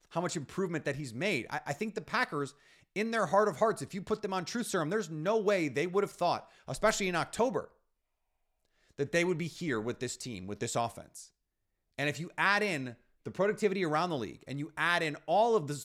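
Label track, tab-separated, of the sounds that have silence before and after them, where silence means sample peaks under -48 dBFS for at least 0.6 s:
8.980000	11.260000	sound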